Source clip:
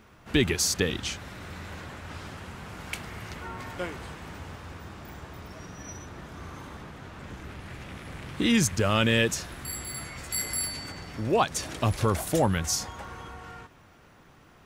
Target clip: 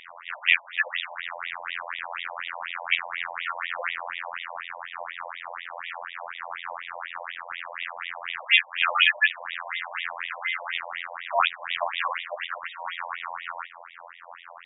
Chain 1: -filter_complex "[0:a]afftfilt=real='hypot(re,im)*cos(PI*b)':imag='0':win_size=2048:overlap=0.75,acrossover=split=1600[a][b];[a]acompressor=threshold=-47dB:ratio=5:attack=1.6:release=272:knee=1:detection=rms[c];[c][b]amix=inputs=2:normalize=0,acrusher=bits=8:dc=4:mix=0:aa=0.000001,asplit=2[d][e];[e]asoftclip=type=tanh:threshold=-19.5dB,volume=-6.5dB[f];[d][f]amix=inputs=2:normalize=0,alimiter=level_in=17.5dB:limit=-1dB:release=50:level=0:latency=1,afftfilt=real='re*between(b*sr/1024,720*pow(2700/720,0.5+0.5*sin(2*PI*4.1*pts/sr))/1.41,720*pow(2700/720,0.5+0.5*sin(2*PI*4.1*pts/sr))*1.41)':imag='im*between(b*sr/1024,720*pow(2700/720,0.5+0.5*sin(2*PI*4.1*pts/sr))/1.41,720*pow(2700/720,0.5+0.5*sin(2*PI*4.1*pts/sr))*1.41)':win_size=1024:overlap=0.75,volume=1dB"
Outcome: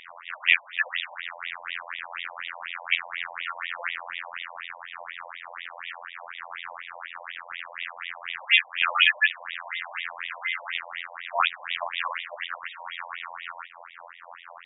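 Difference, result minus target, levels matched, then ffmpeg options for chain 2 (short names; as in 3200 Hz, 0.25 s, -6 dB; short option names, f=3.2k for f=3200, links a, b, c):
compressor: peak gain reduction +6.5 dB
-filter_complex "[0:a]afftfilt=real='hypot(re,im)*cos(PI*b)':imag='0':win_size=2048:overlap=0.75,acrossover=split=1600[a][b];[a]acompressor=threshold=-39dB:ratio=5:attack=1.6:release=272:knee=1:detection=rms[c];[c][b]amix=inputs=2:normalize=0,acrusher=bits=8:dc=4:mix=0:aa=0.000001,asplit=2[d][e];[e]asoftclip=type=tanh:threshold=-19.5dB,volume=-6.5dB[f];[d][f]amix=inputs=2:normalize=0,alimiter=level_in=17.5dB:limit=-1dB:release=50:level=0:latency=1,afftfilt=real='re*between(b*sr/1024,720*pow(2700/720,0.5+0.5*sin(2*PI*4.1*pts/sr))/1.41,720*pow(2700/720,0.5+0.5*sin(2*PI*4.1*pts/sr))*1.41)':imag='im*between(b*sr/1024,720*pow(2700/720,0.5+0.5*sin(2*PI*4.1*pts/sr))/1.41,720*pow(2700/720,0.5+0.5*sin(2*PI*4.1*pts/sr))*1.41)':win_size=1024:overlap=0.75,volume=1dB"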